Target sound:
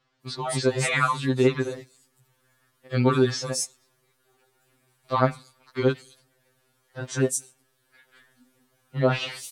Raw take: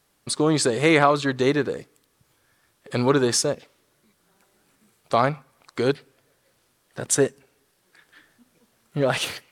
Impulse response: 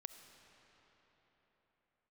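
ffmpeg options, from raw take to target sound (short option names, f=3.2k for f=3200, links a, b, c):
-filter_complex "[0:a]acrossover=split=5400[a][b];[b]adelay=220[c];[a][c]amix=inputs=2:normalize=0,afftfilt=real='re*2.45*eq(mod(b,6),0)':imag='im*2.45*eq(mod(b,6),0)':win_size=2048:overlap=0.75"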